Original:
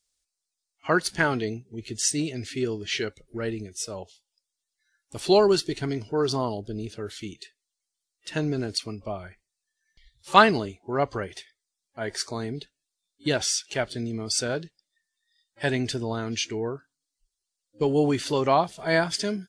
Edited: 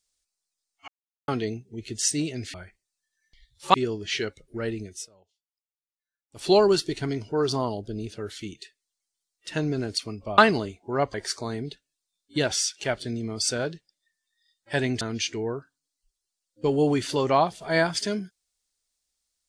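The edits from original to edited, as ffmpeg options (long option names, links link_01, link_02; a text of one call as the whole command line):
ffmpeg -i in.wav -filter_complex "[0:a]asplit=10[link_01][link_02][link_03][link_04][link_05][link_06][link_07][link_08][link_09][link_10];[link_01]atrim=end=0.88,asetpts=PTS-STARTPTS,afade=type=out:start_time=0.876:duration=0.004:curve=hsin[link_11];[link_02]atrim=start=0.88:end=1.28,asetpts=PTS-STARTPTS,volume=0[link_12];[link_03]atrim=start=1.28:end=2.542,asetpts=PTS-STARTPTS,afade=type=in:duration=0.004:curve=hsin[link_13];[link_04]atrim=start=9.178:end=10.382[link_14];[link_05]atrim=start=2.538:end=3.89,asetpts=PTS-STARTPTS,afade=type=out:start_time=1.202:duration=0.15:silence=0.0707946[link_15];[link_06]atrim=start=3.89:end=5.12,asetpts=PTS-STARTPTS,volume=-23dB[link_16];[link_07]atrim=start=5.12:end=9.182,asetpts=PTS-STARTPTS,afade=type=in:duration=0.15:silence=0.0707946[link_17];[link_08]atrim=start=10.378:end=11.142[link_18];[link_09]atrim=start=12.038:end=15.912[link_19];[link_10]atrim=start=16.178[link_20];[link_11][link_12][link_13]concat=n=3:v=0:a=1[link_21];[link_21][link_14]acrossfade=duration=0.004:curve1=hsin:curve2=hsin[link_22];[link_15][link_16][link_17]concat=n=3:v=0:a=1[link_23];[link_22][link_23]acrossfade=duration=0.004:curve1=hsin:curve2=hsin[link_24];[link_24][link_18]acrossfade=duration=0.004:curve1=hsin:curve2=hsin[link_25];[link_25][link_19]acrossfade=duration=0.004:curve1=hsin:curve2=hsin[link_26];[link_26][link_20]acrossfade=duration=0.004:curve1=hsin:curve2=hsin" out.wav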